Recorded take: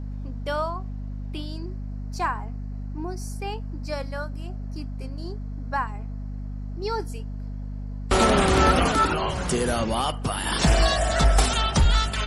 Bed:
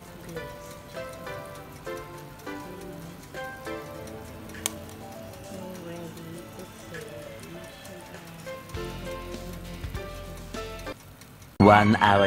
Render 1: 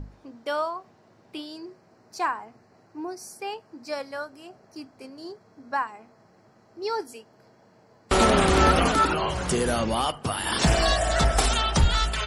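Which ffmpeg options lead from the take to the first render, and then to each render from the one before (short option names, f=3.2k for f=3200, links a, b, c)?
-af "bandreject=f=50:t=h:w=6,bandreject=f=100:t=h:w=6,bandreject=f=150:t=h:w=6,bandreject=f=200:t=h:w=6,bandreject=f=250:t=h:w=6"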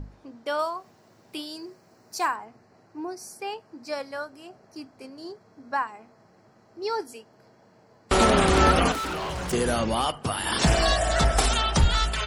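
-filter_complex "[0:a]asettb=1/sr,asplit=3[a][b][c];[a]atrim=end=0.594[d];[b]atrim=start=0.59:end=2.36,asetpts=PTS-STARTPTS,afade=t=in:d=0.004:c=qsin,afade=t=out:st=1.766:d=0.004:c=qsin,aemphasis=mode=production:type=50kf[e];[c]atrim=start=2.356[f];[d][e]acrossfade=d=0.004:c1=hsin:c2=qsin[g];[g][f]acrossfade=d=0.004:c1=qsin:c2=hsin,asettb=1/sr,asplit=3[h][i][j];[h]atrim=end=8.924[k];[i]atrim=start=8.92:end=9.53,asetpts=PTS-STARTPTS,afade=t=in:d=0.004:c=qsin,afade=t=out:st=0.606:d=0.004:c=qsin,asoftclip=type=hard:threshold=-28.5dB[l];[j]atrim=start=9.526[m];[k][l]acrossfade=d=0.004:c1=hsin:c2=qsin[n];[n][m]acrossfade=d=0.004:c1=qsin:c2=hsin"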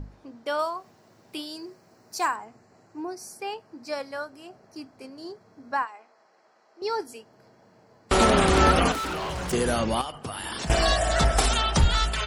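-filter_complex "[0:a]asettb=1/sr,asplit=3[a][b][c];[a]atrim=end=2.224[d];[b]atrim=start=2.22:end=3.02,asetpts=PTS-STARTPTS,afade=t=in:d=0.004:c=qsin,afade=t=out:st=0.796:d=0.004:c=qsin,equalizer=f=7.3k:w=3.7:g=9[e];[c]atrim=start=3.016[f];[d][e]acrossfade=d=0.004:c1=hsin:c2=qsin[g];[g][f]acrossfade=d=0.004:c1=qsin:c2=hsin,asettb=1/sr,asplit=3[h][i][j];[h]atrim=end=5.854[k];[i]atrim=start=5.85:end=6.82,asetpts=PTS-STARTPTS,afade=t=in:d=0.004:c=qsin,afade=t=out:st=0.966:d=0.004:c=qsin,highpass=580,lowpass=7.3k[l];[j]atrim=start=6.816[m];[k][l]acrossfade=d=0.004:c1=hsin:c2=qsin[n];[n][m]acrossfade=d=0.004:c1=qsin:c2=hsin,asettb=1/sr,asplit=3[o][p][q];[o]atrim=end=10.014[r];[p]atrim=start=10.01:end=10.7,asetpts=PTS-STARTPTS,afade=t=in:d=0.004:c=qsin,afade=t=out:st=0.686:d=0.004:c=qsin,acompressor=threshold=-30dB:ratio=6:attack=3.2:release=140:knee=1:detection=peak[s];[q]atrim=start=10.696[t];[r][s]acrossfade=d=0.004:c1=hsin:c2=qsin[u];[u][t]acrossfade=d=0.004:c1=qsin:c2=hsin"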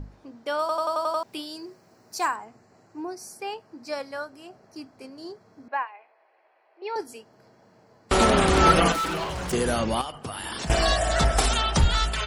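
-filter_complex "[0:a]asettb=1/sr,asplit=3[a][b][c];[a]atrim=end=5.684[d];[b]atrim=start=5.68:end=6.96,asetpts=PTS-STARTPTS,afade=t=in:d=0.004:c=qsin,afade=t=out:st=1.276:d=0.004:c=qsin,highpass=f=380:w=0.5412,highpass=f=380:w=1.3066,equalizer=f=450:t=q:w=4:g=-4,equalizer=f=1.3k:t=q:w=4:g=-8,equalizer=f=2.5k:t=q:w=4:g=6,lowpass=f=3.1k:w=0.5412,lowpass=f=3.1k:w=1.3066[e];[c]atrim=start=6.956[f];[d][e]acrossfade=d=0.004:c1=hsin:c2=qsin[g];[g][f]acrossfade=d=0.004:c1=qsin:c2=hsin,asettb=1/sr,asplit=3[h][i][j];[h]atrim=end=8.634[k];[i]atrim=start=8.63:end=9.24,asetpts=PTS-STARTPTS,afade=t=in:d=0.004:c=qsin,afade=t=out:st=0.606:d=0.004:c=qsin,aecho=1:1:6:0.79,atrim=end_sample=26901[l];[j]atrim=start=9.236[m];[k][l]acrossfade=d=0.004:c1=hsin:c2=qsin[n];[n][m]acrossfade=d=0.004:c1=qsin:c2=hsin,asplit=8[o][p][q][r][s][t][u][v];[o]atrim=end=0.692[w];[p]atrim=start=0.598:end=0.692[x];[q]atrim=start=0.598:end=0.692[y];[r]atrim=start=0.598:end=0.692[z];[s]atrim=start=0.598:end=0.692[aa];[t]atrim=start=0.598:end=0.692[ab];[u]atrim=start=0.598:end=0.692[ac];[v]atrim=start=1.228[ad];[w][x]acrossfade=d=0.004:c1=hsin:c2=hsin[ae];[ae][y]acrossfade=d=0.004:c1=hsin:c2=hsin[af];[af][z]acrossfade=d=0.004:c1=hsin:c2=hsin[ag];[ag][aa]acrossfade=d=0.004:c1=hsin:c2=hsin[ah];[ah][ab]acrossfade=d=0.004:c1=hsin:c2=hsin[ai];[ai][ac]acrossfade=d=0.004:c1=hsin:c2=hsin[aj];[aj][ad]acrossfade=d=0.004:c1=hsin:c2=hsin"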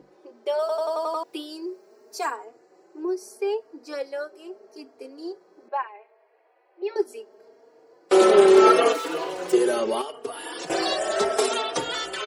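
-filter_complex "[0:a]highpass=f=400:t=q:w=4.9,asplit=2[a][b];[b]adelay=3.6,afreqshift=0.75[c];[a][c]amix=inputs=2:normalize=1"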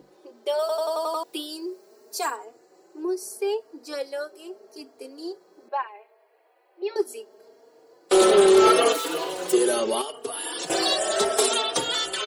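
-af "asoftclip=type=tanh:threshold=-8dB,aexciter=amount=1.8:drive=6.1:freq=3.1k"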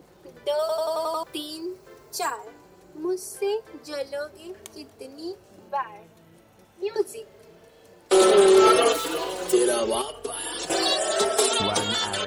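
-filter_complex "[1:a]volume=-14dB[a];[0:a][a]amix=inputs=2:normalize=0"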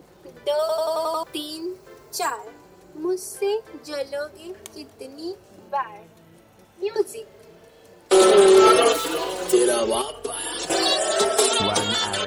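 -af "volume=2.5dB"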